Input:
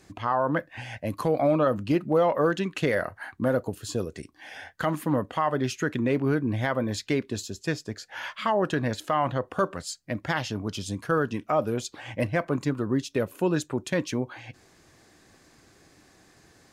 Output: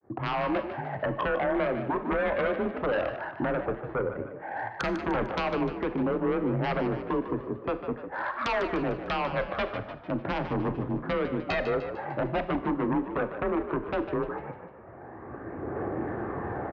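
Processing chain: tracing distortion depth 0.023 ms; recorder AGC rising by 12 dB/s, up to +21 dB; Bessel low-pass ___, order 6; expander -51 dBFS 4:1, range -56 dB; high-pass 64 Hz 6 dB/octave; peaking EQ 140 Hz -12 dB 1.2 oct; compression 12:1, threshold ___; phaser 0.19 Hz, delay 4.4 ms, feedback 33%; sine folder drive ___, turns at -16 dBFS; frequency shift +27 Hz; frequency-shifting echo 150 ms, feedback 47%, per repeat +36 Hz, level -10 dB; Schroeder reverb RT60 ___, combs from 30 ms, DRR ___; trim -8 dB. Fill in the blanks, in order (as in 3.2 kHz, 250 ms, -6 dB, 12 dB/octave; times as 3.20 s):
890 Hz, -27 dBFS, 13 dB, 0.54 s, 12 dB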